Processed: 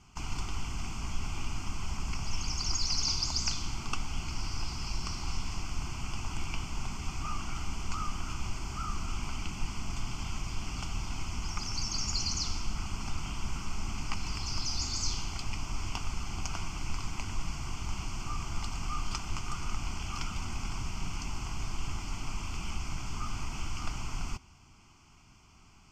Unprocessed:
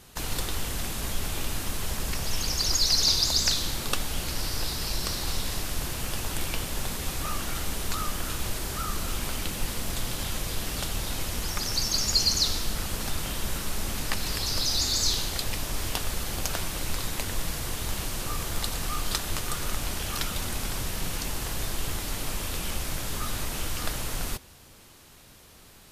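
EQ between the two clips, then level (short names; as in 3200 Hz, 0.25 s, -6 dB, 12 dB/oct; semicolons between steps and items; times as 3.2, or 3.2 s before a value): LPF 5800 Hz 12 dB/oct; bell 3500 Hz -3 dB 0.77 oct; fixed phaser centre 2600 Hz, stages 8; -2.5 dB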